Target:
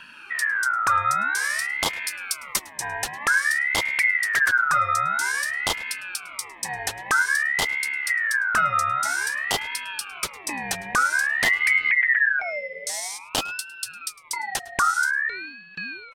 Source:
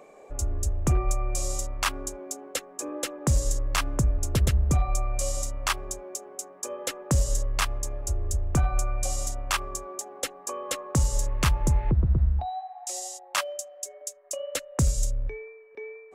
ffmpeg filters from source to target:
-filter_complex "[0:a]asettb=1/sr,asplit=3[s0][s1][s2];[s0]atrim=end=2.084[s3];[s1]atrim=start=2.08:end=2.73,asetpts=PTS-STARTPTS,afade=t=in:d=0.004:c=qsin,afade=t=out:st=0.646:d=0.004:c=qsin,highshelf=f=6500:g=10[s4];[s2]atrim=start=2.726[s5];[s3][s4]acrossfade=d=0.004:c1=hsin:c2=qsin[s6];[s6][s5]acrossfade=d=0.004:c1=qsin:c2=hsin,asplit=2[s7][s8];[s8]adelay=105,volume=0.0794,highshelf=f=4000:g=-2.36[s9];[s7][s9]amix=inputs=2:normalize=0,asplit=2[s10][s11];[s11]acompressor=threshold=0.02:ratio=6,volume=1.41[s12];[s10][s12]amix=inputs=2:normalize=0,aeval=exprs='val(0)*sin(2*PI*1700*n/s+1700*0.25/0.51*sin(2*PI*0.51*n/s))':c=same,volume=1.19"

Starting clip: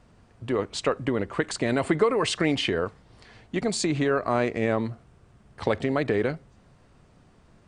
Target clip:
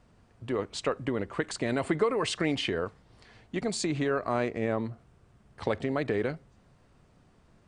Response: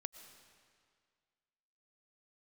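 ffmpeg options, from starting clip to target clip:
-filter_complex "[0:a]asplit=3[s0][s1][s2];[s0]afade=t=out:st=4.46:d=0.02[s3];[s1]adynamicequalizer=threshold=0.01:dfrequency=1700:dqfactor=0.7:tfrequency=1700:tqfactor=0.7:attack=5:release=100:ratio=0.375:range=2:mode=cutabove:tftype=highshelf,afade=t=in:st=4.46:d=0.02,afade=t=out:st=5.97:d=0.02[s4];[s2]afade=t=in:st=5.97:d=0.02[s5];[s3][s4][s5]amix=inputs=3:normalize=0,volume=0.596"

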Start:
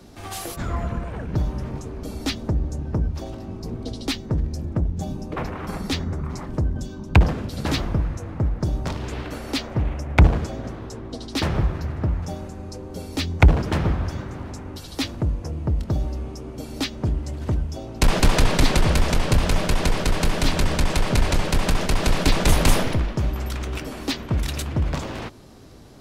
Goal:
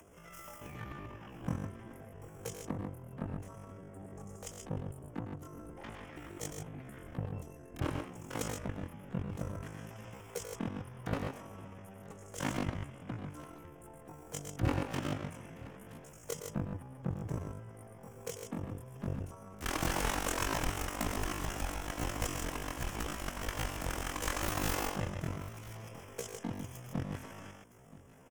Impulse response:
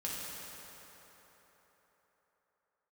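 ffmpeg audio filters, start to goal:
-filter_complex "[0:a]adynamicequalizer=threshold=0.00562:dfrequency=240:dqfactor=6.3:tfrequency=240:tqfactor=6.3:attack=5:release=100:ratio=0.375:range=3:mode=cutabove:tftype=bell,acrossover=split=140[s0][s1];[s0]acompressor=threshold=0.0398:ratio=4[s2];[s2][s1]amix=inputs=2:normalize=0,asoftclip=type=hard:threshold=0.133,asuperstop=centerf=2400:order=8:qfactor=2.5,aeval=exprs='0.266*sin(PI/2*2.82*val(0)/0.266)':c=same,tremolo=f=26:d=0.462,agate=range=0.02:threshold=0.224:ratio=16:detection=peak,aecho=1:1:87|122|895:0.335|0.531|0.112,asetrate=40517,aresample=44100,acompressor=mode=upward:threshold=0.00141:ratio=2.5,asetrate=83250,aresample=44100,atempo=0.529732,volume=1.88"

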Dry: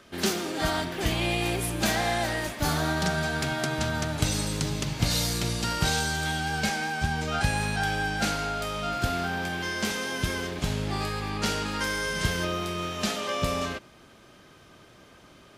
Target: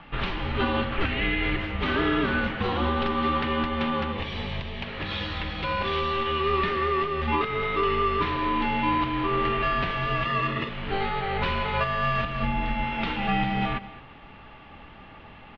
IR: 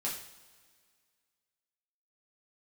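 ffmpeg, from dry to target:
-filter_complex "[0:a]asettb=1/sr,asplit=3[s0][s1][s2];[s0]atrim=end=4.124[s3];[s1]atrim=start=4.12:end=4.84,asetpts=PTS-STARTPTS,afade=t=in:d=0.004:c=qsin,afade=t=out:st=0.716:d=0.004:c=qsin,equalizer=f=1800:w=6:g=-10[s4];[s2]atrim=start=4.836[s5];[s3][s4]acrossfade=d=0.004:c1=hsin:c2=qsin[s6];[s6][s5]acrossfade=d=0.004:c1=qsin:c2=hsin,asettb=1/sr,asplit=3[s7][s8][s9];[s7]atrim=end=10.254[s10];[s8]atrim=start=10.25:end=10.69,asetpts=PTS-STARTPTS,afade=t=in:d=0.004:c=qsin,afade=t=out:st=0.436:d=0.004:c=qsin,aecho=1:1:1.3:0.99,atrim=end_sample=19404[s11];[s9]atrim=start=10.686[s12];[s10][s11]acrossfade=d=0.004:c1=hsin:c2=qsin[s13];[s13][s12]acrossfade=d=0.004:c1=qsin:c2=hsin,asplit=3[s14][s15][s16];[s14]afade=t=out:st=12.18:d=0.02[s17];[s15]lowshelf=f=390:g=10,afade=t=in:st=12.18:d=0.02,afade=t=out:st=12.82:d=0.02[s18];[s16]afade=t=in:st=12.82:d=0.02[s19];[s17][s18][s19]amix=inputs=3:normalize=0,alimiter=limit=0.0891:level=0:latency=1:release=410,aecho=1:1:216:0.141,highpass=f=280:t=q:w=0.5412,highpass=f=280:t=q:w=1.307,lowpass=f=3600:t=q:w=0.5176,lowpass=f=3600:t=q:w=0.7071,lowpass=f=3600:t=q:w=1.932,afreqshift=-390,volume=2.66"

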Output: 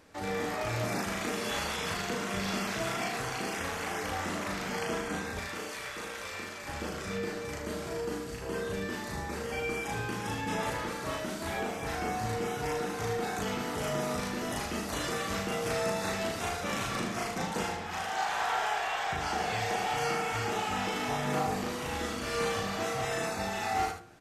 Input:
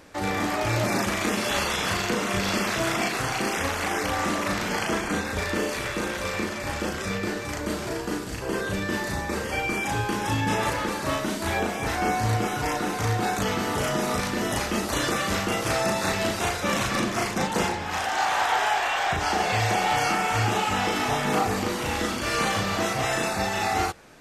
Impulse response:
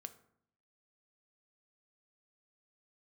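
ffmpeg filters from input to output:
-filter_complex "[0:a]asettb=1/sr,asplit=3[s0][s1][s2];[s0]atrim=end=5.394[s3];[s1]atrim=start=5.39:end=6.68,asetpts=PTS-STARTPTS,afade=t=in:d=0.004:c=qsin,afade=t=out:st=1.286:d=0.004:c=qsin,lowshelf=f=440:g=-11[s4];[s2]atrim=start=6.676[s5];[s3][s4]acrossfade=d=0.004:c1=hsin:c2=qsin[s6];[s6][s5]acrossfade=d=0.004:c1=qsin:c2=hsin,aecho=1:1:77:0.398[s7];[1:a]atrim=start_sample=2205[s8];[s7][s8]afir=irnorm=-1:irlink=0,volume=0.708"

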